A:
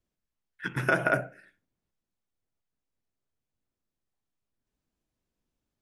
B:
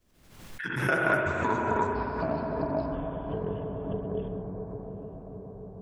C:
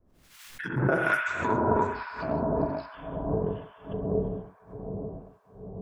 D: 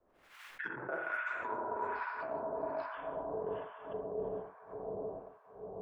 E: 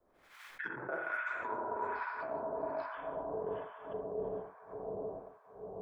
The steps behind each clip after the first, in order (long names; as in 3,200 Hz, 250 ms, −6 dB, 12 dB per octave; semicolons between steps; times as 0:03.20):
spring reverb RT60 3.8 s, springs 42/60 ms, chirp 50 ms, DRR −0.5 dB; delay with pitch and tempo change per echo 117 ms, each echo −7 semitones, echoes 3; background raised ahead of every attack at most 59 dB per second; level −2.5 dB
two-band tremolo in antiphase 1.2 Hz, depth 100%, crossover 1,200 Hz; level +5.5 dB
three-way crossover with the lows and the highs turned down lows −20 dB, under 400 Hz, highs −17 dB, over 2,600 Hz; reversed playback; downward compressor 8 to 1, threshold −38 dBFS, peak gain reduction 16.5 dB; reversed playback; level +3 dB
notch filter 2,800 Hz, Q 12